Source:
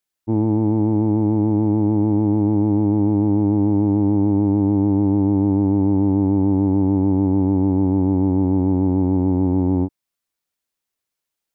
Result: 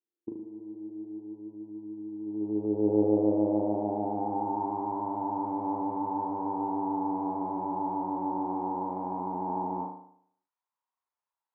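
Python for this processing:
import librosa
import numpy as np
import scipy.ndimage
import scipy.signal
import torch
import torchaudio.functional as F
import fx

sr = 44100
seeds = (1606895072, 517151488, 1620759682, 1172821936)

y = fx.filter_sweep_bandpass(x, sr, from_hz=340.0, to_hz=960.0, start_s=2.16, end_s=4.77, q=5.8)
y = fx.over_compress(y, sr, threshold_db=-31.0, ratio=-0.5)
y = fx.room_flutter(y, sr, wall_m=6.5, rt60_s=0.64)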